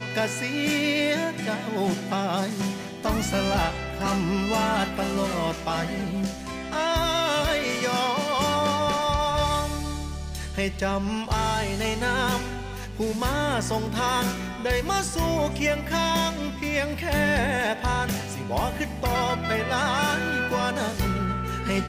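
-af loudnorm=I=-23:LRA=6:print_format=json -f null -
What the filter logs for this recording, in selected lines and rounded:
"input_i" : "-25.6",
"input_tp" : "-13.4",
"input_lra" : "1.9",
"input_thresh" : "-35.6",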